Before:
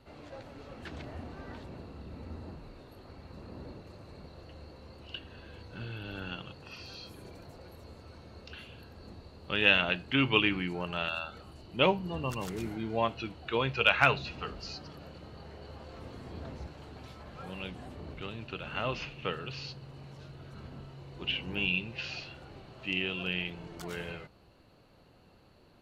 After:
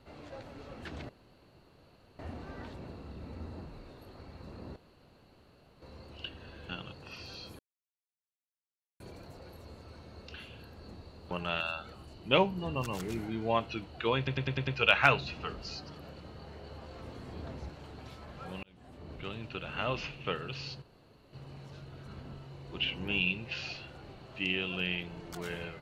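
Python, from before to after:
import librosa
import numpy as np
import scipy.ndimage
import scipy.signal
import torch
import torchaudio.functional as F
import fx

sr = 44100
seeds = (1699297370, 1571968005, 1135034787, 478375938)

y = fx.edit(x, sr, fx.insert_room_tone(at_s=1.09, length_s=1.1),
    fx.room_tone_fill(start_s=3.66, length_s=1.06),
    fx.cut(start_s=5.59, length_s=0.7),
    fx.insert_silence(at_s=7.19, length_s=1.41),
    fx.cut(start_s=9.5, length_s=1.29),
    fx.stutter(start_s=13.65, slice_s=0.1, count=6),
    fx.fade_in_span(start_s=17.61, length_s=0.63),
    fx.insert_room_tone(at_s=19.8, length_s=0.51), tone=tone)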